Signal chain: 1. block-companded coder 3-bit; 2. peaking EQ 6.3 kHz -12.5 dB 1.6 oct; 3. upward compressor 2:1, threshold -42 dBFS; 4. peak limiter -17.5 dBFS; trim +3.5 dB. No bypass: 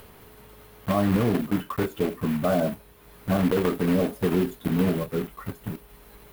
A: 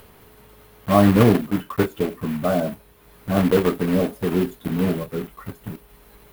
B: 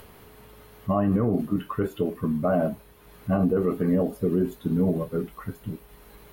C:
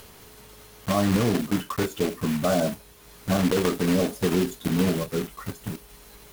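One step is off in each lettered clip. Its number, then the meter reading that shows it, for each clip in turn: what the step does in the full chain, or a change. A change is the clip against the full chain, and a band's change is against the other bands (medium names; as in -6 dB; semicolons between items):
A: 4, crest factor change +7.0 dB; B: 1, distortion -11 dB; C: 2, 8 kHz band +9.0 dB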